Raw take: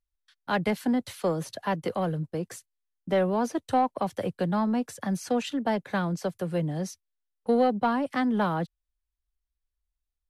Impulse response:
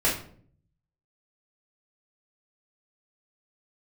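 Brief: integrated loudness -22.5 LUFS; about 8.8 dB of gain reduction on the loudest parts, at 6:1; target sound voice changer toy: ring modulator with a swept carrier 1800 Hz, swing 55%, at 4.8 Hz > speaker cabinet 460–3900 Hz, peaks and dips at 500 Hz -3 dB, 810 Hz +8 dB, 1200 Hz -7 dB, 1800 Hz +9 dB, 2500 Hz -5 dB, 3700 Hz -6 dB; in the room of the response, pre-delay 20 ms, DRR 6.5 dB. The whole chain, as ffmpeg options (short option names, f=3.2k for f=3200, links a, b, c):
-filter_complex "[0:a]acompressor=threshold=-29dB:ratio=6,asplit=2[a][b];[1:a]atrim=start_sample=2205,adelay=20[c];[b][c]afir=irnorm=-1:irlink=0,volume=-19.5dB[d];[a][d]amix=inputs=2:normalize=0,aeval=exprs='val(0)*sin(2*PI*1800*n/s+1800*0.55/4.8*sin(2*PI*4.8*n/s))':c=same,highpass=460,equalizer=f=500:t=q:w=4:g=-3,equalizer=f=810:t=q:w=4:g=8,equalizer=f=1.2k:t=q:w=4:g=-7,equalizer=f=1.8k:t=q:w=4:g=9,equalizer=f=2.5k:t=q:w=4:g=-5,equalizer=f=3.7k:t=q:w=4:g=-6,lowpass=f=3.9k:w=0.5412,lowpass=f=3.9k:w=1.3066,volume=10.5dB"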